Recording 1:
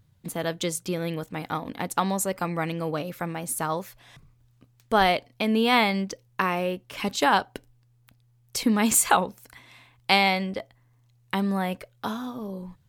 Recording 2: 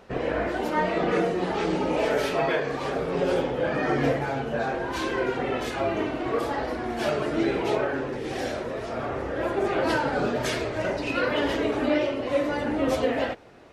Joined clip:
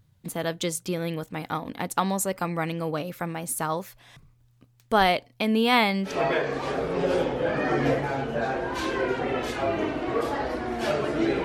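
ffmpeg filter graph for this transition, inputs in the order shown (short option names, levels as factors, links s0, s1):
-filter_complex "[0:a]apad=whole_dur=11.44,atrim=end=11.44,atrim=end=6.19,asetpts=PTS-STARTPTS[s0];[1:a]atrim=start=2.21:end=7.62,asetpts=PTS-STARTPTS[s1];[s0][s1]acrossfade=d=0.16:c1=tri:c2=tri"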